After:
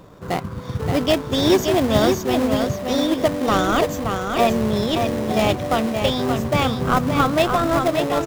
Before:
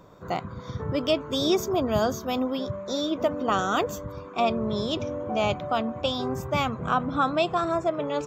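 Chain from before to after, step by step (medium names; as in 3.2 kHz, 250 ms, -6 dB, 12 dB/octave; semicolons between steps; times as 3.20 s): in parallel at -6.5 dB: sample-rate reducer 1.3 kHz, jitter 20%; on the sum: delay 574 ms -5.5 dB; trim +4.5 dB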